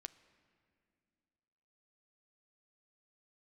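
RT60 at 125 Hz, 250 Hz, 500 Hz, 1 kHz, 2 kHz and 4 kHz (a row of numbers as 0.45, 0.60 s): 2.6, 2.8, 2.6, 2.2, 2.2, 1.8 s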